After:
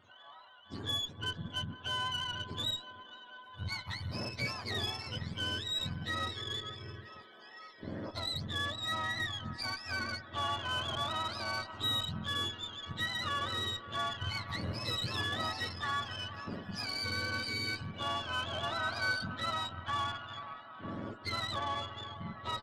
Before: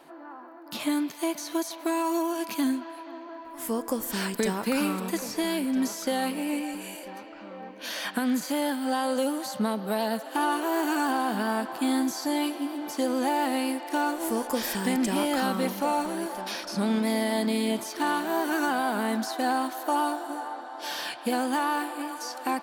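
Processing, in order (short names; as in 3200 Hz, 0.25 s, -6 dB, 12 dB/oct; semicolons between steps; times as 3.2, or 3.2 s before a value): spectrum mirrored in octaves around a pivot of 1000 Hz; low shelf 440 Hz -7.5 dB; added harmonics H 8 -25 dB, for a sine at -16 dBFS; 18.63–19.26 small resonant body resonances 1500/3200 Hz, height 8 dB -> 13 dB; downsampling 32000 Hz; gain -6.5 dB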